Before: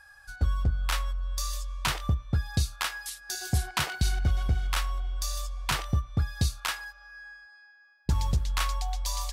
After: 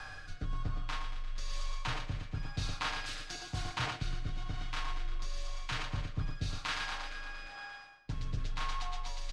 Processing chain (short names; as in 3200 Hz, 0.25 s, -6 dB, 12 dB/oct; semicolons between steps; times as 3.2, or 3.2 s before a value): per-bin compression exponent 0.6; air absorption 120 m; comb 6.4 ms, depth 73%; thinning echo 0.116 s, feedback 68%, high-pass 240 Hz, level -8 dB; on a send at -20 dB: reverb RT60 0.75 s, pre-delay 4 ms; on the sum: frequency shift -20 Hz; reverse; compressor 5:1, threshold -36 dBFS, peak gain reduction 15.5 dB; reverse; rotary speaker horn 1 Hz; gain +3.5 dB